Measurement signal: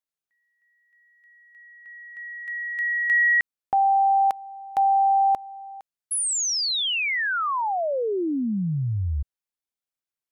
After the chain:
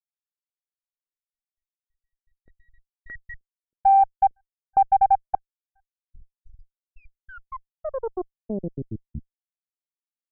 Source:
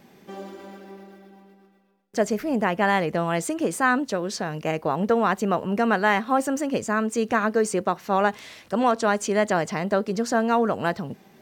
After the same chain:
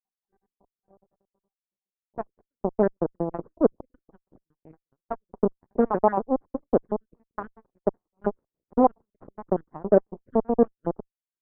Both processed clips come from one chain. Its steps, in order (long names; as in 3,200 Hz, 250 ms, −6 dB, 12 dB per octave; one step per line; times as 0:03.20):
time-frequency cells dropped at random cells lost 77%
harmonic generator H 7 −17 dB, 8 −24 dB, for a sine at −10.5 dBFS
low-pass filter 1,100 Hz 24 dB per octave
parametric band 400 Hz +7.5 dB 2.4 octaves